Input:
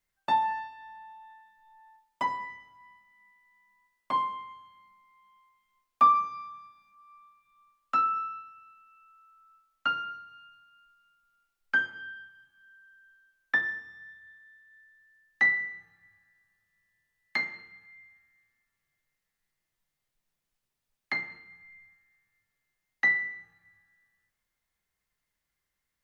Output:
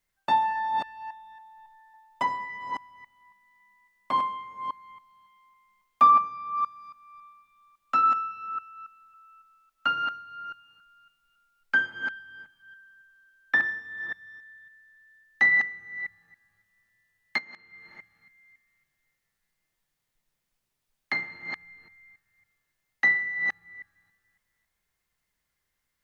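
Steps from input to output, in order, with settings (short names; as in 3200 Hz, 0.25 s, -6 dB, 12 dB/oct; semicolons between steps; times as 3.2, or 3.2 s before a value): reverse delay 0.277 s, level -6 dB; 6.1–6.58 high shelf 3700 Hz -11.5 dB; 17.38–17.83 compressor 20:1, threshold -44 dBFS, peak gain reduction 18 dB; gain +2.5 dB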